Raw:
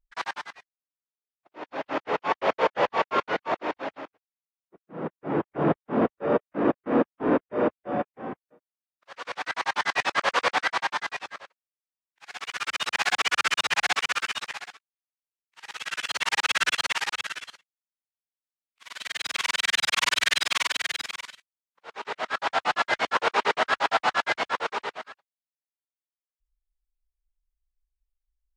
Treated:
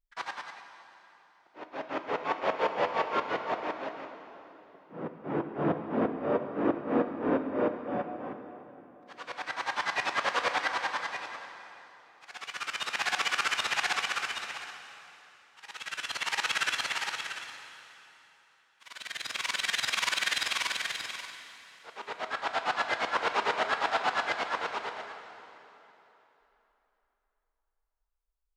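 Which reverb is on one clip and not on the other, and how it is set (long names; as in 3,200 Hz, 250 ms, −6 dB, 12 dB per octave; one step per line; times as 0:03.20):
dense smooth reverb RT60 3.4 s, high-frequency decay 0.85×, DRR 6 dB
level −5.5 dB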